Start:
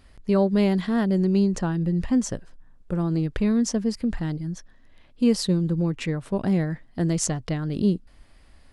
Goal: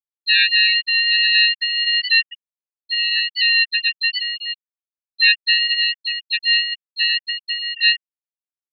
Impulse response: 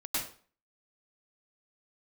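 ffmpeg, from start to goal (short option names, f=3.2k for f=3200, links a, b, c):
-filter_complex "[0:a]lowpass=f=2.6k:t=q:w=0.5098,lowpass=f=2.6k:t=q:w=0.6013,lowpass=f=2.6k:t=q:w=0.9,lowpass=f=2.6k:t=q:w=2.563,afreqshift=-3000,acrossover=split=410|1000[a][b][c];[c]crystalizer=i=7.5:c=0[d];[a][b][d]amix=inputs=3:normalize=0,asplit=4[e][f][g][h];[f]asetrate=29433,aresample=44100,atempo=1.49831,volume=-3dB[i];[g]asetrate=35002,aresample=44100,atempo=1.25992,volume=-15dB[j];[h]asetrate=66075,aresample=44100,atempo=0.66742,volume=-1dB[k];[e][i][j][k]amix=inputs=4:normalize=0,afftfilt=real='re*gte(hypot(re,im),1.12)':imag='im*gte(hypot(re,im),1.12)':win_size=1024:overlap=0.75,volume=-8.5dB"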